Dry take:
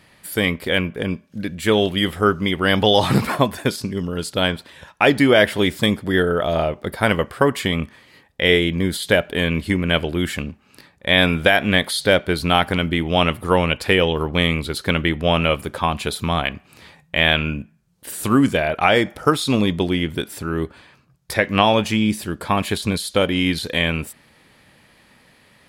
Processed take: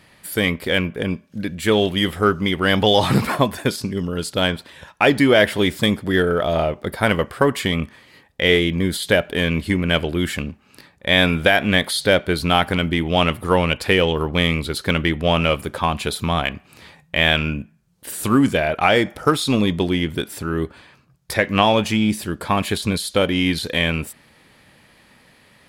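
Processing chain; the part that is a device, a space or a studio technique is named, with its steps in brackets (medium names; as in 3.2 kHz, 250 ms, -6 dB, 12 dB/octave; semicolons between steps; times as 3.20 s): parallel distortion (in parallel at -12.5 dB: hard clipper -18.5 dBFS, distortion -6 dB); on the sum: trim -1 dB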